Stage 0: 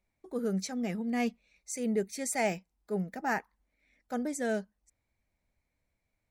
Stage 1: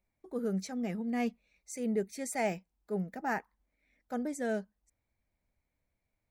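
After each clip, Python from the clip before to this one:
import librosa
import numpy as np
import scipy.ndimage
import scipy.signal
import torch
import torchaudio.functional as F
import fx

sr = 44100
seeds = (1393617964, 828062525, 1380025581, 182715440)

y = fx.peak_eq(x, sr, hz=6200.0, db=-4.5, octaves=2.8)
y = F.gain(torch.from_numpy(y), -1.5).numpy()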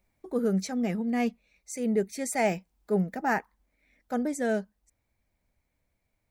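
y = fx.rider(x, sr, range_db=3, speed_s=0.5)
y = F.gain(torch.from_numpy(y), 7.0).numpy()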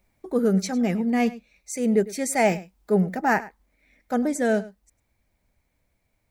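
y = x + 10.0 ** (-18.0 / 20.0) * np.pad(x, (int(102 * sr / 1000.0), 0))[:len(x)]
y = F.gain(torch.from_numpy(y), 5.5).numpy()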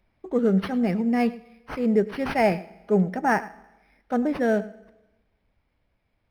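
y = fx.rev_schroeder(x, sr, rt60_s=1.1, comb_ms=27, drr_db=19.0)
y = np.interp(np.arange(len(y)), np.arange(len(y))[::6], y[::6])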